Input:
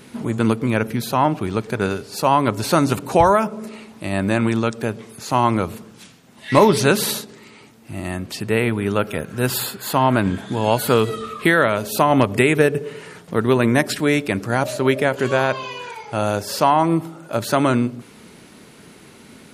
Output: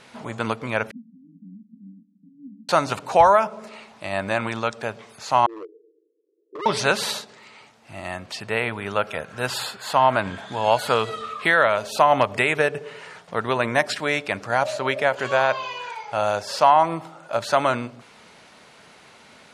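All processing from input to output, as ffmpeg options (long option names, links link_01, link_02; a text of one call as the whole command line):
ffmpeg -i in.wav -filter_complex "[0:a]asettb=1/sr,asplit=3[link_01][link_02][link_03];[link_01]atrim=end=0.914[link_04];[link_02]atrim=start=0.91:end=2.69,asetpts=PTS-STARTPTS,afade=type=in:duration=0.004:curve=qsin,afade=type=out:start_time=1.776:duration=0.004:curve=qsin,aeval=exprs='clip(val(0),-1,0.0794)':channel_layout=same,asuperpass=centerf=220:order=12:qfactor=2[link_05];[link_03]atrim=start=2.686[link_06];[link_04][link_05]acrossfade=duration=0.004:curve1=hsin:curve2=qsin[link_07];[link_07][link_06]acrossfade=duration=0.004:curve1=qsin:curve2=hsin,asettb=1/sr,asplit=3[link_08][link_09][link_10];[link_08]atrim=end=5.464[link_11];[link_09]atrim=start=5.46:end=6.66,asetpts=PTS-STARTPTS,afade=type=in:duration=0.004:curve=qsin,afade=type=out:start_time=1.196:duration=0.004:curve=qsin,asuperpass=centerf=380:order=12:qfactor=2.2,asoftclip=type=hard:threshold=-22.5dB[link_12];[link_10]atrim=start=6.656[link_13];[link_11][link_12]acrossfade=duration=0.004:curve1=hsin:curve2=qsin[link_14];[link_14][link_13]acrossfade=duration=0.004:curve1=qsin:curve2=hsin,lowpass=6600,lowshelf=frequency=470:width_type=q:width=1.5:gain=-9.5,volume=-1dB" out.wav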